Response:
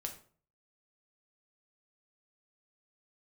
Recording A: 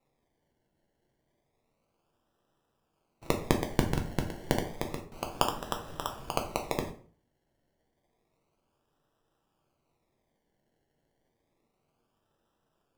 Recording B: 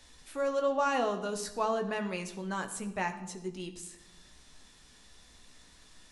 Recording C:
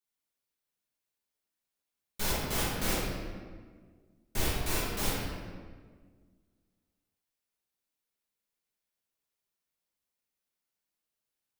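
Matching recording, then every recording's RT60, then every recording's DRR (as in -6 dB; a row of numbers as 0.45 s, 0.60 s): A; 0.45 s, 0.90 s, 1.7 s; 3.0 dB, 5.5 dB, -8.5 dB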